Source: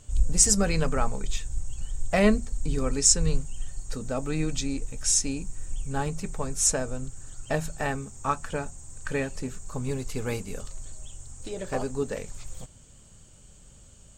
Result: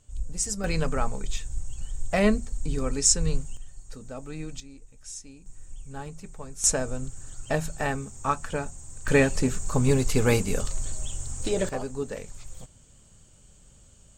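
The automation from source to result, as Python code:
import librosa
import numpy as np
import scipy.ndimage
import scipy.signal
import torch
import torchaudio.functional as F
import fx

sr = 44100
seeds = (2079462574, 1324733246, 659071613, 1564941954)

y = fx.gain(x, sr, db=fx.steps((0.0, -9.5), (0.64, -1.0), (3.57, -8.5), (4.6, -17.0), (5.46, -9.0), (6.64, 1.0), (9.08, 9.0), (11.69, -2.5)))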